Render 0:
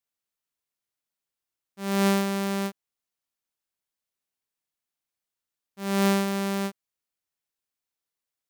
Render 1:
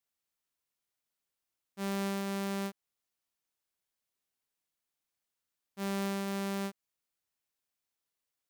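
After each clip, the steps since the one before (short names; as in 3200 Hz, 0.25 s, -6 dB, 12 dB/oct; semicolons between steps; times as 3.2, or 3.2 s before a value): compressor 6:1, threshold -33 dBFS, peak gain reduction 13 dB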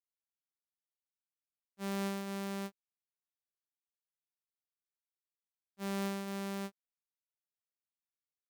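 upward expander 2.5:1, over -46 dBFS; gain -1.5 dB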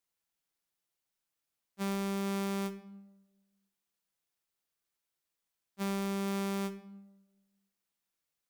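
shoebox room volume 3500 m³, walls furnished, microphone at 0.75 m; limiter -36 dBFS, peak gain reduction 9 dB; gain +8.5 dB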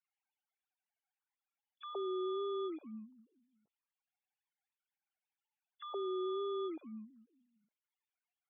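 sine-wave speech; loudest bins only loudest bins 32; gain -4 dB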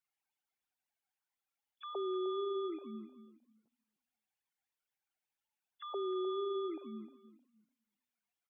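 feedback echo 0.308 s, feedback 22%, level -15 dB; gain +1 dB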